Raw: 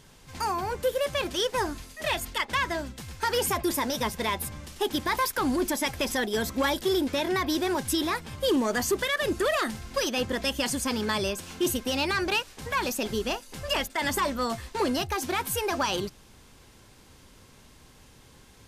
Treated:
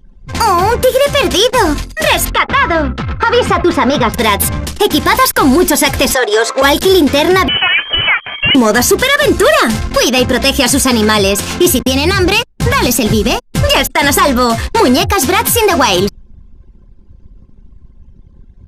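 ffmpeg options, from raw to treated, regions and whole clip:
-filter_complex "[0:a]asettb=1/sr,asplit=3[s0][s1][s2];[s0]atrim=end=2.304[s3];[s1]atrim=start=2.3:end=4.14,asetpts=PTS-STARTPTS,afade=t=in:d=0.004:c=qsin,afade=t=out:st=1.836:d=0.004:c=qsin,lowpass=3100,equalizer=f=1300:t=o:w=0.23:g=10.5[s4];[s2]atrim=start=4.136[s5];[s3][s4]acrossfade=d=0.004:c1=hsin:c2=qsin[s6];[s6][s5]acrossfade=d=0.004:c1=qsin:c2=hsin,asettb=1/sr,asplit=3[s7][s8][s9];[s7]atrim=end=6.144[s10];[s8]atrim=start=6.14:end=6.62,asetpts=PTS-STARTPTS,afade=t=in:d=0.004:c=qsin,afade=t=out:st=0.476:d=0.004:c=qsin,acrusher=bits=7:mix=0:aa=0.5,highpass=f=470:w=0.5412,highpass=f=470:w=1.3066,equalizer=f=470:t=q:w=4:g=6,equalizer=f=1200:t=q:w=4:g=6,equalizer=f=3100:t=q:w=4:g=-4,equalizer=f=5400:t=q:w=4:g=-5,lowpass=f=8000:w=0.5412,lowpass=f=8000:w=1.3066[s11];[s9]atrim=start=6.616[s12];[s10][s11]acrossfade=d=0.004:c1=hsin:c2=qsin[s13];[s13][s12]acrossfade=d=0.004:c1=qsin:c2=hsin,asettb=1/sr,asplit=3[s14][s15][s16];[s14]atrim=end=7.484[s17];[s15]atrim=start=7.48:end=8.55,asetpts=PTS-STARTPTS,afade=t=in:d=0.004:c=qsin,afade=t=out:st=1.066:d=0.004:c=qsin,lowshelf=f=700:t=q:w=1.5:g=-8.5,lowpass=f=2800:t=q:w=0.5098,lowpass=f=2800:t=q:w=0.6013,lowpass=f=2800:t=q:w=0.9,lowpass=f=2800:t=q:w=2.563,afreqshift=-3300[s18];[s16]atrim=start=8.546[s19];[s17][s18]acrossfade=d=0.004:c1=hsin:c2=qsin[s20];[s20][s19]acrossfade=d=0.004:c1=qsin:c2=hsin,asettb=1/sr,asplit=3[s21][s22][s23];[s21]atrim=end=11.794[s24];[s22]atrim=start=11.79:end=13.67,asetpts=PTS-STARTPTS,afade=t=in:d=0.004:c=qsin,afade=t=out:st=1.876:d=0.004:c=qsin,equalizer=f=120:t=o:w=2:g=7,acrossover=split=250|3000[s25][s26][s27];[s26]acompressor=threshold=0.0316:ratio=2.5:attack=3.2:release=140:knee=2.83:detection=peak[s28];[s25][s28][s27]amix=inputs=3:normalize=0,agate=range=0.126:threshold=0.01:ratio=16:release=100:detection=peak[s29];[s23]atrim=start=13.666[s30];[s24][s29]acrossfade=d=0.004:c1=hsin:c2=qsin[s31];[s31][s30]acrossfade=d=0.004:c1=qsin:c2=hsin,anlmdn=0.0631,acompressor=threshold=0.0447:ratio=6,alimiter=level_in=15.8:limit=0.891:release=50:level=0:latency=1,volume=0.891"

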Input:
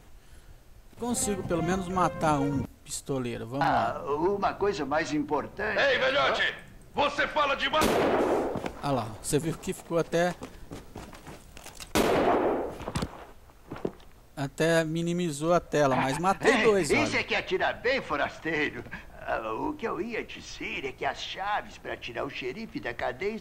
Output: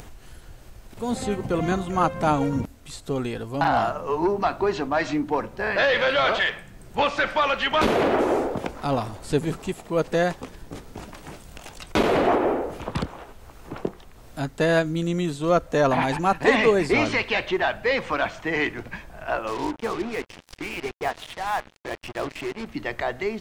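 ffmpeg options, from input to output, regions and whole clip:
-filter_complex "[0:a]asettb=1/sr,asplit=3[s0][s1][s2];[s0]atrim=end=19.474[s3];[s1]atrim=start=19.47:end=22.66,asetpts=PTS-STARTPTS,afade=t=in:d=0.004:c=qsin,afade=t=out:st=3.186:d=0.004:c=qsin,aemphasis=mode=reproduction:type=75kf,acrusher=bits=5:mix=0:aa=0.5[s4];[s2]atrim=start=22.656[s5];[s3][s4]acrossfade=d=0.004:c1=hsin:c2=qsin[s6];[s6][s5]acrossfade=d=0.004:c1=qsin:c2=hsin,acrossover=split=4700[s7][s8];[s8]acompressor=threshold=0.00398:ratio=4:attack=1:release=60[s9];[s7][s9]amix=inputs=2:normalize=0,equalizer=f=13000:w=4.6:g=-2.5,acompressor=mode=upward:threshold=0.01:ratio=2.5,volume=1.58"

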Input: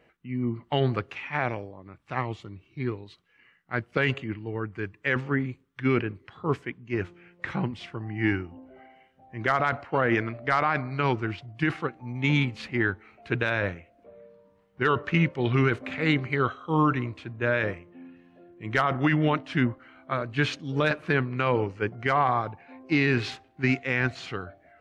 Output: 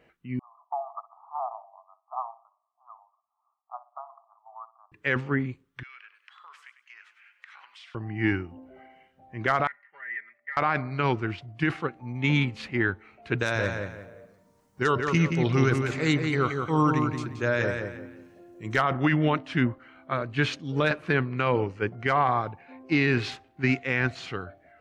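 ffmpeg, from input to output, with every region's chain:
-filter_complex "[0:a]asettb=1/sr,asplit=3[s0][s1][s2];[s0]atrim=end=0.394[s3];[s1]atrim=start=0.39:end=4.92,asetpts=PTS-STARTPTS,afade=t=in:d=0.004:c=qsin,afade=t=out:st=4.526:d=0.004:c=qsin,asuperpass=centerf=900:order=20:qfactor=1.5,asplit=2[s4][s5];[s5]adelay=61,lowpass=f=860:p=1,volume=0.237,asplit=2[s6][s7];[s7]adelay=61,lowpass=f=860:p=1,volume=0.46,asplit=2[s8][s9];[s9]adelay=61,lowpass=f=860:p=1,volume=0.46,asplit=2[s10][s11];[s11]adelay=61,lowpass=f=860:p=1,volume=0.46,asplit=2[s12][s13];[s13]adelay=61,lowpass=f=860:p=1,volume=0.46[s14];[s4][s6][s8][s10][s12][s14]amix=inputs=6:normalize=0,atrim=end_sample=199773[s15];[s2]atrim=start=4.916[s16];[s3][s15]acrossfade=d=0.004:c1=hsin:c2=qsin[s17];[s17][s16]acrossfade=d=0.004:c1=qsin:c2=hsin,asettb=1/sr,asplit=3[s18][s19][s20];[s18]atrim=end=5.834[s21];[s19]atrim=start=5.83:end=7.95,asetpts=PTS-STARTPTS,afade=t=in:d=0.004:c=qsin,afade=t=out:st=2.116:d=0.004:c=qsin,highpass=f=1200:w=0.5412,highpass=f=1200:w=1.3066,acompressor=threshold=0.00562:ratio=8:attack=3.2:release=140:knee=1:detection=peak,asplit=5[s22][s23][s24][s25][s26];[s23]adelay=99,afreqshift=40,volume=0.266[s27];[s24]adelay=198,afreqshift=80,volume=0.101[s28];[s25]adelay=297,afreqshift=120,volume=0.0385[s29];[s26]adelay=396,afreqshift=160,volume=0.0146[s30];[s22][s27][s28][s29][s30]amix=inputs=5:normalize=0,atrim=end_sample=93492[s31];[s20]atrim=start=7.946[s32];[s21][s31]acrossfade=d=0.004:c1=hsin:c2=qsin[s33];[s33][s32]acrossfade=d=0.004:c1=qsin:c2=hsin,asettb=1/sr,asplit=3[s34][s35][s36];[s34]atrim=end=9.674[s37];[s35]atrim=start=9.67:end=10.57,asetpts=PTS-STARTPTS,afade=t=in:d=0.004:c=qsin,afade=t=out:st=0.896:d=0.004:c=qsin,bandpass=f=1900:t=q:w=20,aecho=1:1:5:0.92,atrim=end_sample=39690[s38];[s36]atrim=start=10.566[s39];[s37][s38]acrossfade=d=0.004:c1=hsin:c2=qsin[s40];[s40][s39]acrossfade=d=0.004:c1=qsin:c2=hsin,asettb=1/sr,asplit=3[s41][s42][s43];[s41]atrim=end=13.384[s44];[s42]atrim=start=13.38:end=18.76,asetpts=PTS-STARTPTS,afade=t=in:d=0.004:c=qsin,afade=t=out:st=5.376:d=0.004:c=qsin,highshelf=f=4300:t=q:w=1.5:g=13,asplit=2[s45][s46];[s46]adelay=175,lowpass=f=3700:p=1,volume=0.562,asplit=2[s47][s48];[s48]adelay=175,lowpass=f=3700:p=1,volume=0.32,asplit=2[s49][s50];[s50]adelay=175,lowpass=f=3700:p=1,volume=0.32,asplit=2[s51][s52];[s52]adelay=175,lowpass=f=3700:p=1,volume=0.32[s53];[s45][s47][s49][s51][s53]amix=inputs=5:normalize=0,atrim=end_sample=237258[s54];[s43]atrim=start=18.756[s55];[s44][s54]acrossfade=d=0.004:c1=hsin:c2=qsin[s56];[s56][s55]acrossfade=d=0.004:c1=qsin:c2=hsin"

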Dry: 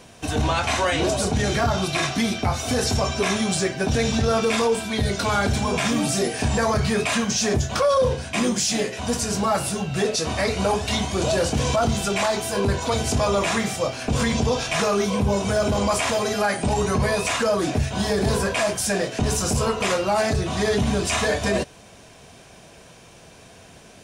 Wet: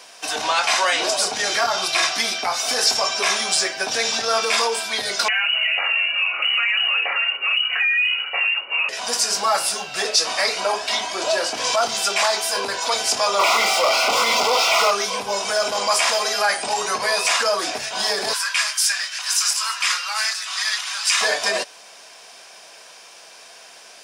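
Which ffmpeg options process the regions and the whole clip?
-filter_complex "[0:a]asettb=1/sr,asplit=3[s0][s1][s2];[s0]atrim=end=5.284[s3];[s1]atrim=start=5.28:end=8.89,asetpts=PTS-STARTPTS,afade=t=in:d=0.004:c=qsin,afade=t=out:st=3.606:d=0.004:c=qsin,acompressor=threshold=0.0891:ratio=6:attack=3.2:release=140:knee=1:detection=peak,lowpass=f=2600:t=q:w=0.5098,lowpass=f=2600:t=q:w=0.6013,lowpass=f=2600:t=q:w=0.9,lowpass=f=2600:t=q:w=2.563,afreqshift=-3000[s4];[s2]atrim=start=8.886[s5];[s3][s4]acrossfade=d=0.004:c1=hsin:c2=qsin[s6];[s6][s5]acrossfade=d=0.004:c1=qsin:c2=hsin,asettb=1/sr,asplit=3[s7][s8][s9];[s7]atrim=end=10.604[s10];[s8]atrim=start=10.6:end=11.64,asetpts=PTS-STARTPTS,afade=t=in:d=0.004:c=qsin,afade=t=out:st=1.036:d=0.004:c=qsin,highshelf=f=4000:g=-7,aecho=1:1:3.1:0.34,atrim=end_sample=45864,aeval=exprs='val(0)+0.00398*sin(2*PI*1600*n/s)':c=same[s11];[s9]atrim=start=11.636[s12];[s10][s11]acrossfade=d=0.004:c1=hsin:c2=qsin[s13];[s13][s12]acrossfade=d=0.004:c1=qsin:c2=hsin,asettb=1/sr,asplit=3[s14][s15][s16];[s14]atrim=end=13.394[s17];[s15]atrim=start=13.39:end=14.91,asetpts=PTS-STARTPTS,afade=t=in:d=0.004:c=qsin,afade=t=out:st=1.516:d=0.004:c=qsin,asplit=2[s18][s19];[s19]highpass=f=720:p=1,volume=70.8,asoftclip=type=tanh:threshold=0.299[s20];[s18][s20]amix=inputs=2:normalize=0,lowpass=f=1500:p=1,volume=0.501,asuperstop=centerf=1700:order=12:qfactor=3.9[s21];[s16]atrim=start=14.906[s22];[s17][s21]acrossfade=d=0.004:c1=hsin:c2=qsin[s23];[s23][s22]acrossfade=d=0.004:c1=qsin:c2=hsin,asettb=1/sr,asplit=3[s24][s25][s26];[s24]atrim=end=18.334[s27];[s25]atrim=start=18.33:end=21.21,asetpts=PTS-STARTPTS,afade=t=in:d=0.004:c=qsin,afade=t=out:st=2.876:d=0.004:c=qsin,highpass=f=1200:w=0.5412,highpass=f=1200:w=1.3066,aecho=1:1:862:0.178,atrim=end_sample=127008[s28];[s26]atrim=start=21.206[s29];[s27][s28]acrossfade=d=0.004:c1=hsin:c2=qsin[s30];[s30][s29]acrossfade=d=0.004:c1=qsin:c2=hsin,highpass=780,equalizer=f=5000:w=4.6:g=8,acontrast=32"

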